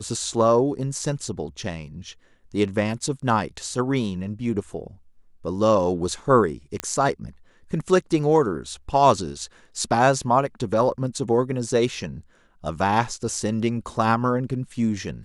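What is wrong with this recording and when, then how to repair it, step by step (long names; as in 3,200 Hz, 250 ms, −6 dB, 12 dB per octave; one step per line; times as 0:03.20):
0:06.80: click −10 dBFS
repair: click removal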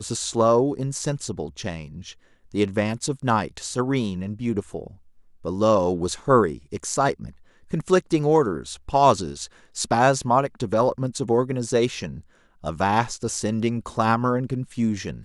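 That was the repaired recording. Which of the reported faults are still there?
none of them is left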